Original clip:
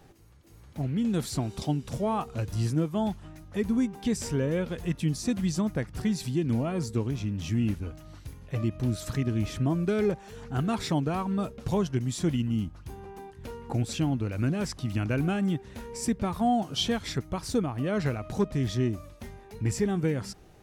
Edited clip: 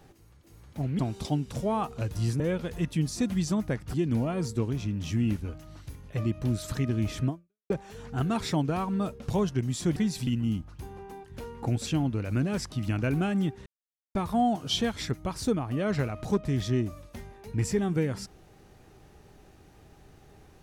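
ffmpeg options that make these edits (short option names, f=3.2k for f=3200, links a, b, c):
-filter_complex "[0:a]asplit=9[a][b][c][d][e][f][g][h][i];[a]atrim=end=0.992[j];[b]atrim=start=1.358:end=2.772[k];[c]atrim=start=4.468:end=6.012[l];[d]atrim=start=6.318:end=10.08,asetpts=PTS-STARTPTS,afade=t=out:st=3.342:d=0.42:c=exp[m];[e]atrim=start=10.08:end=12.342,asetpts=PTS-STARTPTS,afade=t=in:d=0.004:c=hsin[n];[f]atrim=start=6.008:end=6.322[o];[g]atrim=start=12.338:end=15.73,asetpts=PTS-STARTPTS,afade=t=out:st=3.388:d=0.004:c=hsin[p];[h]atrim=start=15.73:end=16.22,asetpts=PTS-STARTPTS,volume=0[q];[i]atrim=start=16.22,asetpts=PTS-STARTPTS,afade=t=in:d=0.004:c=hsin[r];[j][k]acrossfade=d=0.004:c1=hsin:c2=hsin[s];[s][l]acrossfade=d=0.004:c1=hsin:c2=hsin[t];[m][n]concat=n=2:v=0:a=1[u];[t][u]acrossfade=d=0.004:c1=hsin:c2=hsin[v];[v][o]acrossfade=d=0.004:c1=hsin:c2=hsin[w];[p][q][r]concat=n=3:v=0:a=1[x];[w][x]acrossfade=d=0.004:c1=hsin:c2=hsin"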